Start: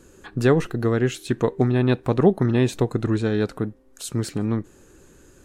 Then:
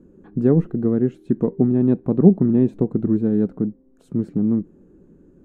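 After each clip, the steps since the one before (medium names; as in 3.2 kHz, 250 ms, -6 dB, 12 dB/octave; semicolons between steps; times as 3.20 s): FFT filter 120 Hz 0 dB, 180 Hz +13 dB, 4.7 kHz -26 dB; trim -3.5 dB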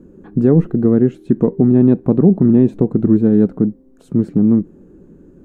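loudness maximiser +8 dB; trim -1 dB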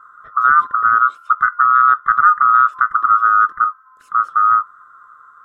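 split-band scrambler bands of 1 kHz; trim -1 dB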